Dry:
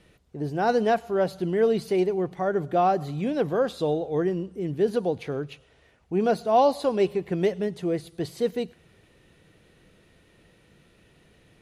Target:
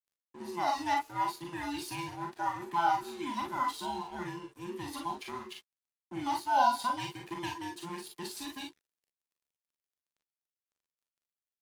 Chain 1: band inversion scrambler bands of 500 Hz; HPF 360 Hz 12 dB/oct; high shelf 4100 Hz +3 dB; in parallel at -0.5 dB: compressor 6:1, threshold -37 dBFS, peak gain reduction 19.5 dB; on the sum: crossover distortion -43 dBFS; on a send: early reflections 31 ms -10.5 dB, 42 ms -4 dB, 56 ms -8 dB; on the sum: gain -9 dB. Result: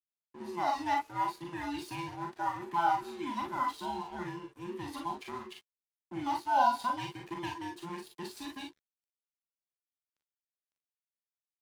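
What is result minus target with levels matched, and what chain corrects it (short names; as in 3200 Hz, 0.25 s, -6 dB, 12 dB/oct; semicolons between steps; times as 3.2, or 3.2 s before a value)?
8000 Hz band -5.5 dB
band inversion scrambler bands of 500 Hz; HPF 360 Hz 12 dB/oct; high shelf 4100 Hz +11 dB; in parallel at -0.5 dB: compressor 6:1, threshold -37 dBFS, peak gain reduction 19.5 dB; on the sum: crossover distortion -43 dBFS; on a send: early reflections 31 ms -10.5 dB, 42 ms -4 dB, 56 ms -8 dB; on the sum: gain -9 dB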